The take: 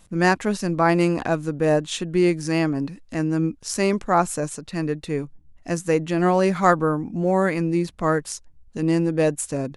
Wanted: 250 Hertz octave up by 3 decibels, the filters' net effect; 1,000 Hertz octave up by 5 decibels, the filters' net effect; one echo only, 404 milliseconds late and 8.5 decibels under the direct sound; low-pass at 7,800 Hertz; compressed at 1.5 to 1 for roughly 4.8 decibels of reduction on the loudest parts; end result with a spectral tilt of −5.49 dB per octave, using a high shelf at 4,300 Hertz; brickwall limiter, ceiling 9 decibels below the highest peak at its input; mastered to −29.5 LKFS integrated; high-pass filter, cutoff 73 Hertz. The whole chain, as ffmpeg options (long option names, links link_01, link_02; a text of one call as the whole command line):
ffmpeg -i in.wav -af "highpass=73,lowpass=7800,equalizer=frequency=250:width_type=o:gain=4.5,equalizer=frequency=1000:width_type=o:gain=6,highshelf=frequency=4300:gain=7,acompressor=threshold=-21dB:ratio=1.5,alimiter=limit=-13.5dB:level=0:latency=1,aecho=1:1:404:0.376,volume=-5.5dB" out.wav